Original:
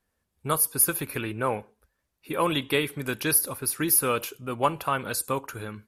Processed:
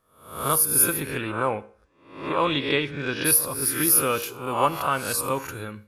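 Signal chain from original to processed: spectral swells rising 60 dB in 0.56 s; 1.02–3.24 LPF 10000 Hz -> 4900 Hz 24 dB/oct; reverb RT60 0.50 s, pre-delay 4 ms, DRR 15.5 dB

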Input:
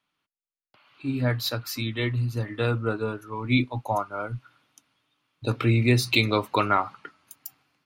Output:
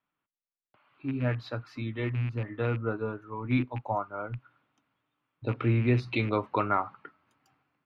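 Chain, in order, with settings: rattling part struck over -25 dBFS, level -23 dBFS; LPF 1900 Hz 12 dB/oct; gain -4 dB

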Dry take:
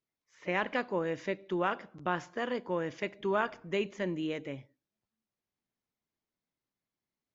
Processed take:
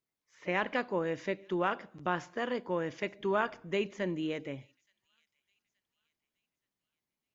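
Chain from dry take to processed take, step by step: thin delay 0.874 s, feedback 37%, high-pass 3800 Hz, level -22 dB

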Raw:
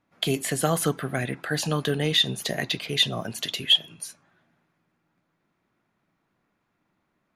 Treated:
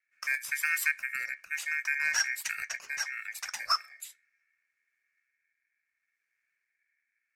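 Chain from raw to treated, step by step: rotary speaker horn 0.75 Hz; Chebyshev band-stop 470–4200 Hz, order 2; ring modulator 2000 Hz

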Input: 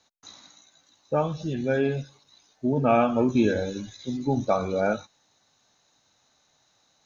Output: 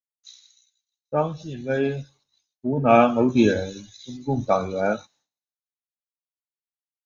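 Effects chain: expander -55 dBFS; three-band expander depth 100%; gain +1 dB

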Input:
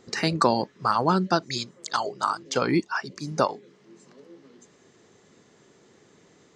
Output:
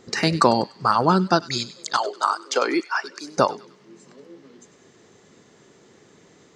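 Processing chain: 1.97–3.38 HPF 340 Hz 24 dB/oct; thin delay 98 ms, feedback 41%, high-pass 1800 Hz, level -15 dB; gain +4 dB

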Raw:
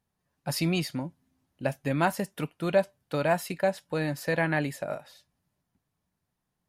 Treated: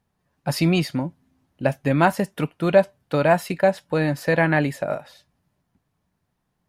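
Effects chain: high shelf 4000 Hz -7.5 dB; gain +8 dB

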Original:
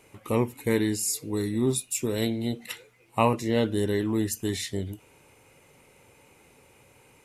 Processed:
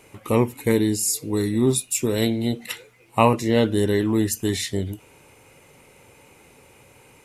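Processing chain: 0.71–1.3 dynamic EQ 1600 Hz, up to -8 dB, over -45 dBFS, Q 0.82; gain +5.5 dB

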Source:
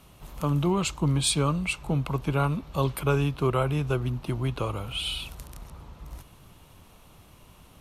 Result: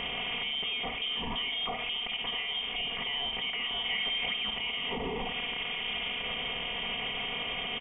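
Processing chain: per-bin compression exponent 0.6; HPF 180 Hz 12 dB/oct; notch 910 Hz, Q 16; comb 4.1 ms, depth 88%; flutter echo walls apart 9.1 m, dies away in 0.29 s; inverted band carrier 3400 Hz; compressor 3:1, threshold -36 dBFS, peak gain reduction 14 dB; limiter -33.5 dBFS, peak gain reduction 11.5 dB; 3.85–4.34 bell 2200 Hz +7.5 dB 0.37 oct; gain +8 dB

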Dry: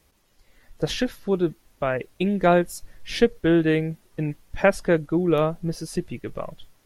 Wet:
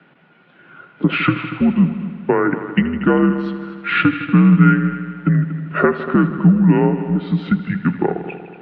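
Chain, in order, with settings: in parallel at +1 dB: limiter -16 dBFS, peak gain reduction 11.5 dB; on the sum: compressor, threshold -20 dBFS, peak gain reduction 11 dB; small resonant body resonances 300/1900 Hz, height 15 dB, ringing for 50 ms; wide varispeed 0.795×; on a send: multi-head echo 79 ms, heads all three, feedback 52%, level -16 dB; on the sum: mistuned SSB -82 Hz 300–3000 Hz; gain +7.5 dB

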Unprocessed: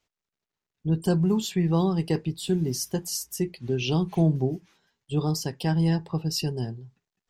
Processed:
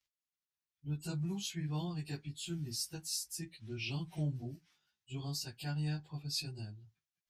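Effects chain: pitch shift by moving bins -1.5 st; passive tone stack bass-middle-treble 5-5-5; gain +2.5 dB

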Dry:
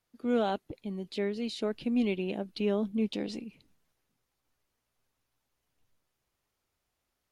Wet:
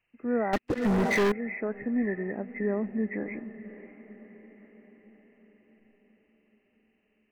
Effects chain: nonlinear frequency compression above 1600 Hz 4:1; diffused feedback echo 0.583 s, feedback 57%, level -15.5 dB; 0.53–1.32 sample leveller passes 5

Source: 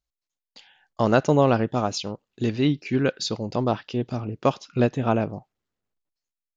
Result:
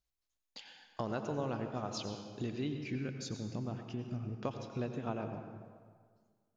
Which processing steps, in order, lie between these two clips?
2.95–4.32 graphic EQ 125/500/1000/4000 Hz +3/-7/-7/-11 dB; compressor 3:1, threshold -39 dBFS, peak gain reduction 18.5 dB; reverb RT60 1.8 s, pre-delay 81 ms, DRR 5.5 dB; gain -1.5 dB

